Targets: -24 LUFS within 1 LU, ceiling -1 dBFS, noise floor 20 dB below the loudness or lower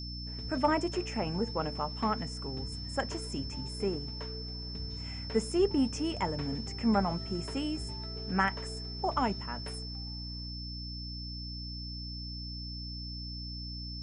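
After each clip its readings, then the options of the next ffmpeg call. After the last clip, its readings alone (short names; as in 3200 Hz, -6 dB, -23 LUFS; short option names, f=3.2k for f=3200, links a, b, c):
hum 60 Hz; harmonics up to 300 Hz; hum level -39 dBFS; steady tone 5300 Hz; tone level -42 dBFS; loudness -34.5 LUFS; peak -14.0 dBFS; loudness target -24.0 LUFS
-> -af "bandreject=f=60:t=h:w=4,bandreject=f=120:t=h:w=4,bandreject=f=180:t=h:w=4,bandreject=f=240:t=h:w=4,bandreject=f=300:t=h:w=4"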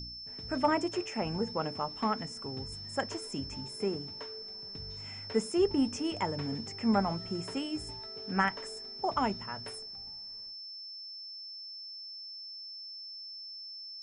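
hum none; steady tone 5300 Hz; tone level -42 dBFS
-> -af "bandreject=f=5.3k:w=30"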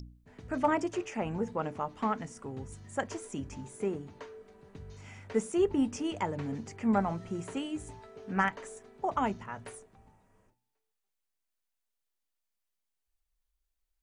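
steady tone none; loudness -33.5 LUFS; peak -14.5 dBFS; loudness target -24.0 LUFS
-> -af "volume=9.5dB"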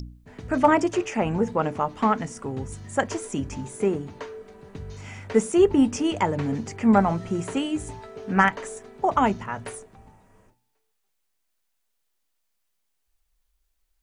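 loudness -24.0 LUFS; peak -5.0 dBFS; noise floor -74 dBFS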